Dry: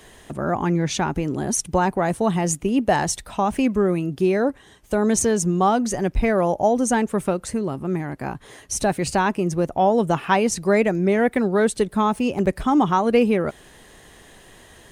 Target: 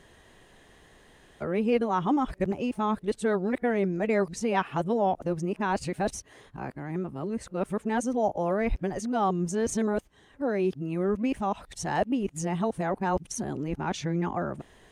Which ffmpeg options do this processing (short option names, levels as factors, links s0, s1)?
-af "areverse,highshelf=f=6400:g=-10,volume=0.422"